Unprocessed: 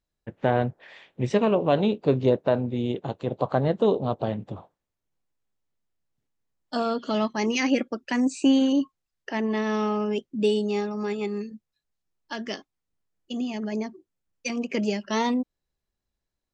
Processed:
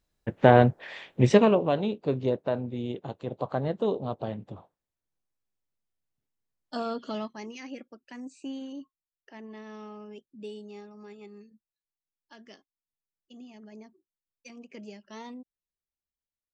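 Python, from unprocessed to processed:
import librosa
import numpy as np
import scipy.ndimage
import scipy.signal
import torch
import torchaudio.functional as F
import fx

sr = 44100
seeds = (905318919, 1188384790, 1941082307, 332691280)

y = fx.gain(x, sr, db=fx.line((1.28, 6.0), (1.79, -6.0), (7.05, -6.0), (7.57, -18.0)))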